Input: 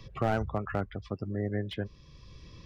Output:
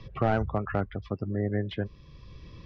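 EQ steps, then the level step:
high-frequency loss of the air 160 metres
+3.5 dB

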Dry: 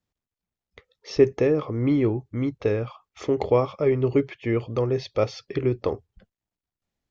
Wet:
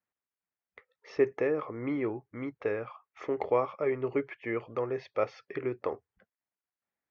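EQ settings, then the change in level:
high-pass filter 720 Hz 6 dB per octave
high-frequency loss of the air 66 metres
high shelf with overshoot 2,700 Hz −10 dB, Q 1.5
−2.0 dB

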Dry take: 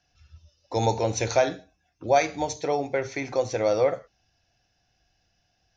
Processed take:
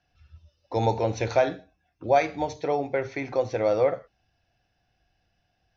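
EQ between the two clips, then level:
Gaussian smoothing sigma 1.9 samples
0.0 dB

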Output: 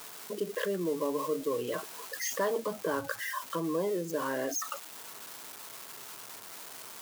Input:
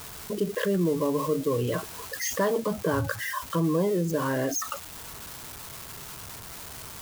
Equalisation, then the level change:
high-pass filter 300 Hz 12 dB per octave
−4.0 dB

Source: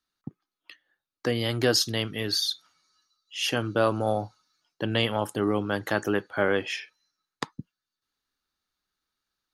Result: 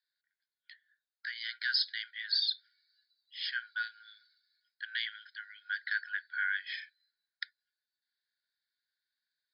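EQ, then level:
linear-phase brick-wall band-pass 1,400–5,200 Hz
high-frequency loss of the air 68 metres
phaser with its sweep stopped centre 2,700 Hz, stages 6
0.0 dB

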